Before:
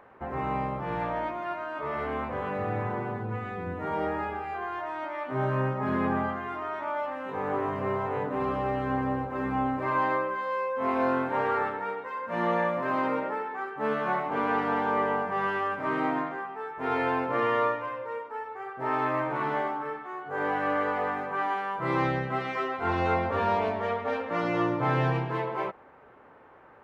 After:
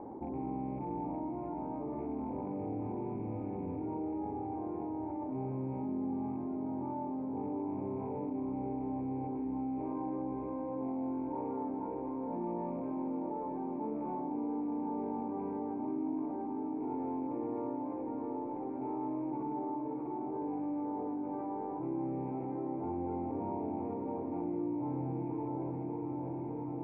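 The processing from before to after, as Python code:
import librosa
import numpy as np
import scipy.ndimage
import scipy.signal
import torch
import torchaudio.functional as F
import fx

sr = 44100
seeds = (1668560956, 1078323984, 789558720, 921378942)

y = fx.rattle_buzz(x, sr, strikes_db=-38.0, level_db=-21.0)
y = fx.formant_cascade(y, sr, vowel='u')
y = fx.echo_diffused(y, sr, ms=688, feedback_pct=72, wet_db=-7.5)
y = fx.env_flatten(y, sr, amount_pct=70)
y = F.gain(torch.from_numpy(y), -3.5).numpy()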